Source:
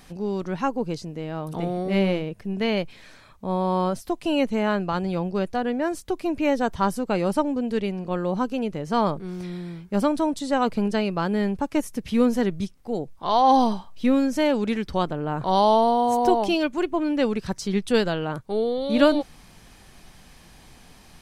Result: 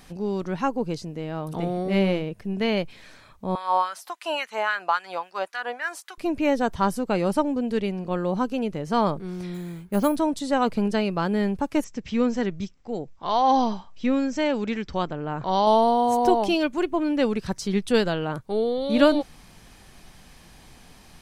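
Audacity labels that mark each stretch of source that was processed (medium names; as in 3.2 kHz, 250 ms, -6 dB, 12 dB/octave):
3.550000	6.180000	LFO high-pass sine 3.6 Hz 750–1700 Hz
9.540000	10.160000	careless resampling rate divided by 4×, down filtered, up hold
11.840000	15.670000	rippled Chebyshev low-pass 7.7 kHz, ripple 3 dB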